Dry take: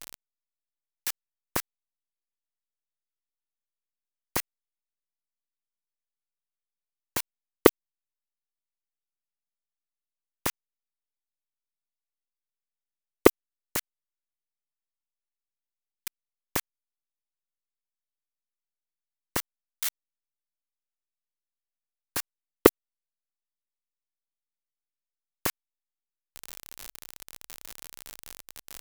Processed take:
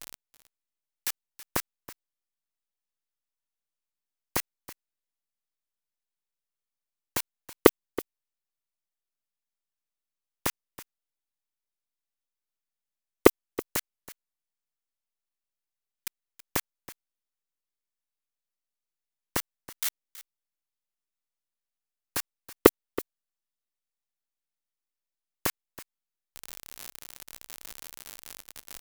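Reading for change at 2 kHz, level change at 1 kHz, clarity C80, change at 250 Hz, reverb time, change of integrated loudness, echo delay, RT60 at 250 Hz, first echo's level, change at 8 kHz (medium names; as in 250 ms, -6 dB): 0.0 dB, 0.0 dB, no reverb, 0.0 dB, no reverb, -1.0 dB, 325 ms, no reverb, -16.5 dB, 0.0 dB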